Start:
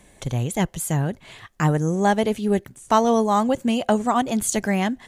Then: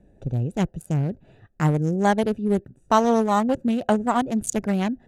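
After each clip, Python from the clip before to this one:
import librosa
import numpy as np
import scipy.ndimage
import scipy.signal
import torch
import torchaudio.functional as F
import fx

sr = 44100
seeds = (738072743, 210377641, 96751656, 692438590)

y = fx.wiener(x, sr, points=41)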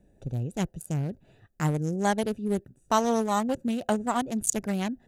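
y = fx.high_shelf(x, sr, hz=4300.0, db=11.0)
y = y * librosa.db_to_amplitude(-6.0)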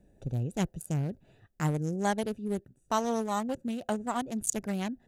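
y = fx.rider(x, sr, range_db=4, speed_s=2.0)
y = y * librosa.db_to_amplitude(-4.5)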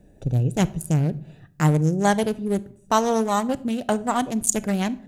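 y = fx.room_shoebox(x, sr, seeds[0], volume_m3=970.0, walls='furnished', distance_m=0.46)
y = y * librosa.db_to_amplitude(9.0)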